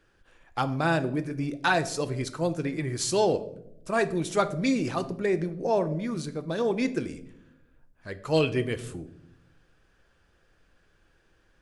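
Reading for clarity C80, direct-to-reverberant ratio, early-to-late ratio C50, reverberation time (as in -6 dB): 18.0 dB, 10.0 dB, 15.5 dB, 0.75 s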